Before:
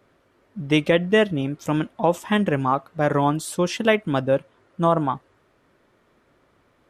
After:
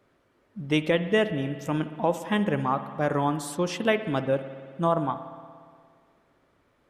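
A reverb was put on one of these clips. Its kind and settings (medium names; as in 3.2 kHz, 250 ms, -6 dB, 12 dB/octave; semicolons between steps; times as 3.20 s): spring tank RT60 2 s, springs 58 ms, chirp 50 ms, DRR 11 dB; trim -5 dB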